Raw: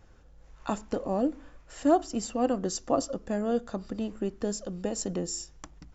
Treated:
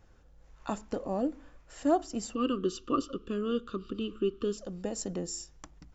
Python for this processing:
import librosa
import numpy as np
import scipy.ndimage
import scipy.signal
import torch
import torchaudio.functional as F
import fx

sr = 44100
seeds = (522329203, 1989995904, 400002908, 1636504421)

y = fx.curve_eq(x, sr, hz=(210.0, 400.0, 790.0, 1200.0, 2000.0, 2900.0, 5000.0, 8000.0), db=(0, 8, -27, 11, -12, 14, -5, -10), at=(2.35, 4.58))
y = y * librosa.db_to_amplitude(-3.5)